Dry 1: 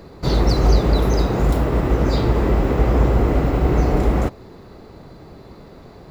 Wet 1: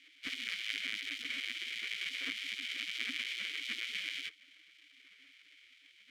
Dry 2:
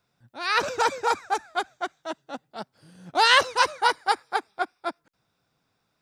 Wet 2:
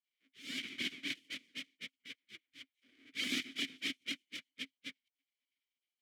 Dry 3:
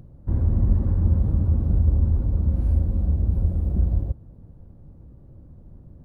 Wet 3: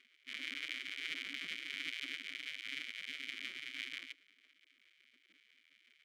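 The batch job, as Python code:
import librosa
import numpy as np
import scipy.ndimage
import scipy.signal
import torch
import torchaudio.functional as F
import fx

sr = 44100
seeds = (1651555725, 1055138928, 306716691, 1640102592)

y = fx.halfwave_hold(x, sr)
y = scipy.signal.sosfilt(scipy.signal.butter(4, 100.0, 'highpass', fs=sr, output='sos'), y)
y = fx.spec_gate(y, sr, threshold_db=-20, keep='weak')
y = fx.vowel_filter(y, sr, vowel='i')
y = y * librosa.db_to_amplitude(2.5)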